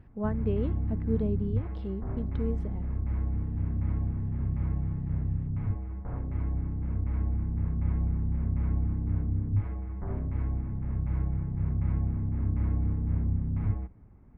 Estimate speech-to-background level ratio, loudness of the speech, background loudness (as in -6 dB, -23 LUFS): -4.0 dB, -35.5 LUFS, -31.5 LUFS